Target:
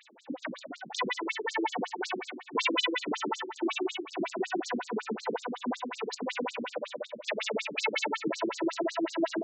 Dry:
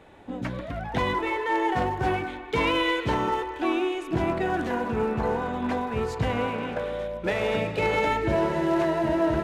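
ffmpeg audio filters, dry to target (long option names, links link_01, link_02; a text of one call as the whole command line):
ffmpeg -i in.wav -af "crystalizer=i=5.5:c=0,afftfilt=real='re*between(b*sr/1024,240*pow(6000/240,0.5+0.5*sin(2*PI*5.4*pts/sr))/1.41,240*pow(6000/240,0.5+0.5*sin(2*PI*5.4*pts/sr))*1.41)':imag='im*between(b*sr/1024,240*pow(6000/240,0.5+0.5*sin(2*PI*5.4*pts/sr))/1.41,240*pow(6000/240,0.5+0.5*sin(2*PI*5.4*pts/sr))*1.41)':win_size=1024:overlap=0.75" out.wav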